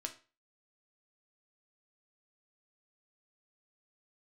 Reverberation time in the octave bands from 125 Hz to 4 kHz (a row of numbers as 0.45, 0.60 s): 0.40, 0.35, 0.35, 0.35, 0.35, 0.30 s